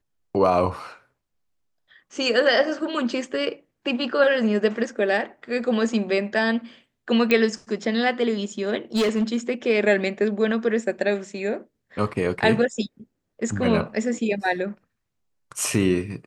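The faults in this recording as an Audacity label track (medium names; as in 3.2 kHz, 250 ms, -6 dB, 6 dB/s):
7.310000	7.310000	pop -8 dBFS
8.960000	9.360000	clipped -17 dBFS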